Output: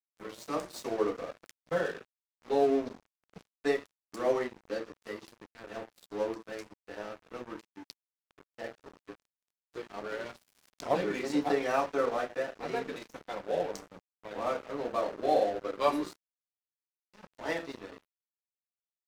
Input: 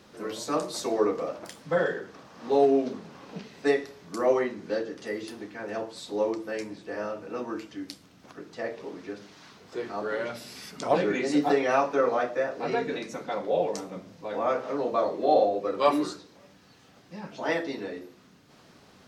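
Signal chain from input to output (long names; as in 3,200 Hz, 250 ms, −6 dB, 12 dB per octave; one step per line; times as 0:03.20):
0:09.18–0:09.78: comb filter 6.4 ms, depth 87%
dead-zone distortion −37 dBFS
level −4 dB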